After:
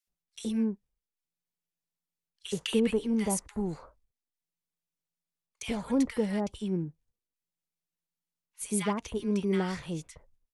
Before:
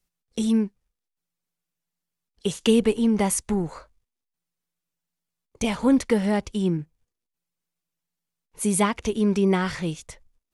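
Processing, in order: 0.55–2.96 s: dynamic bell 1.9 kHz, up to +5 dB, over -38 dBFS, Q 0.79; bands offset in time highs, lows 70 ms, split 1.3 kHz; trim -7.5 dB

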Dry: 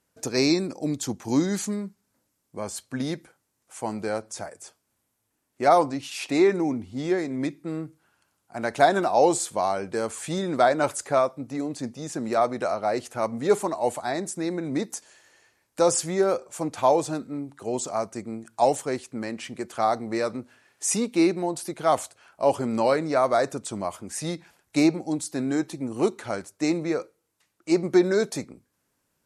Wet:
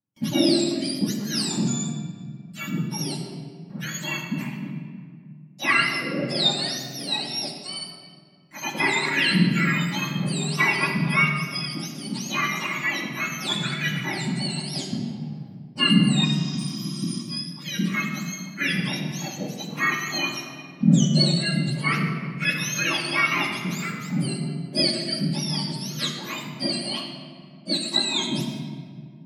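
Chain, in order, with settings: spectrum inverted on a logarithmic axis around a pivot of 1.2 kHz; spectral replace 16.27–17.17 s, 370–7500 Hz after; gate with hold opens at -51 dBFS; simulated room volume 3600 m³, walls mixed, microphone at 2.3 m

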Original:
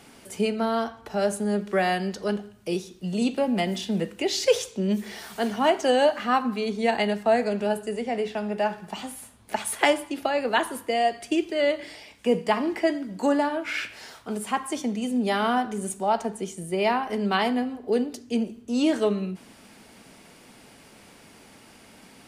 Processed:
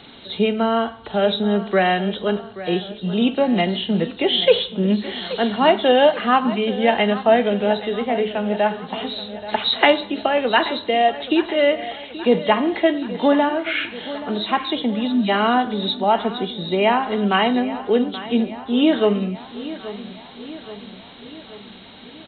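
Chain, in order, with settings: knee-point frequency compression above 2.8 kHz 4:1; spectral selection erased 15.07–15.29 s, 320–980 Hz; feedback delay 829 ms, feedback 58%, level -15 dB; trim +6 dB

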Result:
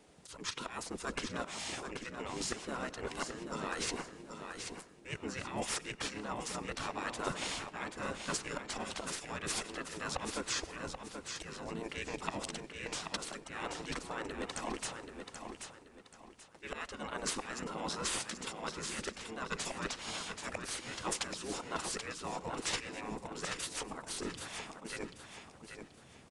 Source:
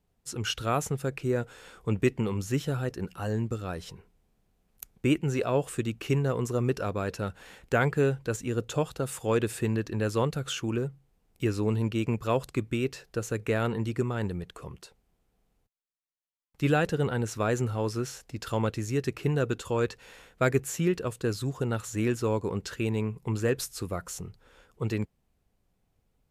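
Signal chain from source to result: slow attack 552 ms; harmony voices -7 st -13 dB, -5 st -2 dB; reverse; compression 8:1, threshold -43 dBFS, peak gain reduction 24 dB; reverse; spectral gate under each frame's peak -10 dB weak; feedback delay 782 ms, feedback 32%, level -7 dB; on a send at -20 dB: reverberation RT60 0.65 s, pre-delay 89 ms; on the sum: resampled via 22.05 kHz; trim +16 dB

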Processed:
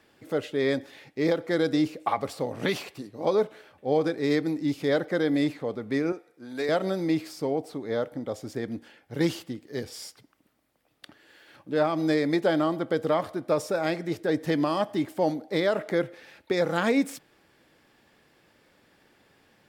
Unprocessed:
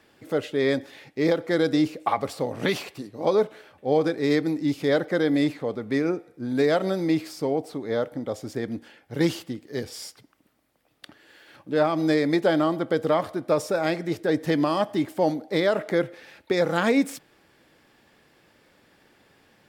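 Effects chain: 6.12–6.69 s: high-pass 720 Hz 6 dB/octave; trim -2.5 dB

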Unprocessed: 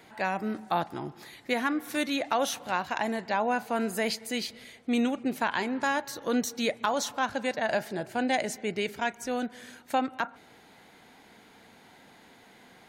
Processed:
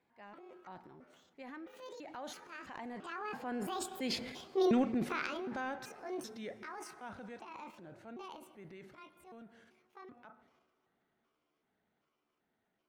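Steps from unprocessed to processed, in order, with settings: pitch shift switched off and on +8 st, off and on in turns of 359 ms; Doppler pass-by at 4.46 s, 25 m/s, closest 9.1 m; FFT filter 320 Hz 0 dB, 1.7 kHz -4 dB, 13 kHz -26 dB; transient shaper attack -2 dB, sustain +10 dB; treble shelf 3.9 kHz +9.5 dB; on a send: reverberation RT60 2.8 s, pre-delay 37 ms, DRR 19.5 dB

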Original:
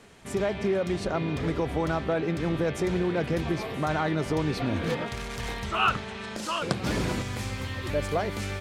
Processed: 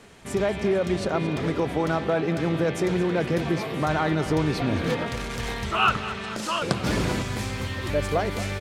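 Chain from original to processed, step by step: 1.06–3.82 s: high-pass 100 Hz; feedback delay 224 ms, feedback 54%, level -13.5 dB; trim +3 dB

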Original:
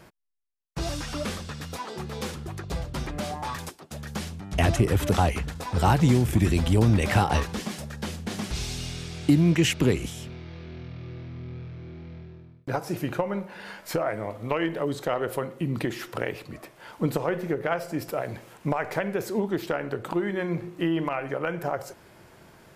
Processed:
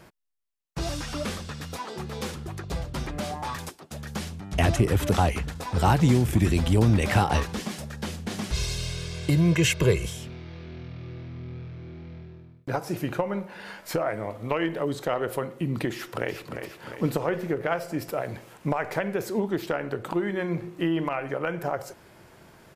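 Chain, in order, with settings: 8.52–10.17 s: comb 1.9 ms, depth 79%; 15.93–16.62 s: echo throw 350 ms, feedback 60%, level -7.5 dB

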